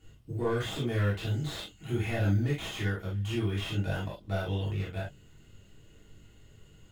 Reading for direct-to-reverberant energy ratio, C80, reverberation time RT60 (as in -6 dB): -8.5 dB, 23.5 dB, no single decay rate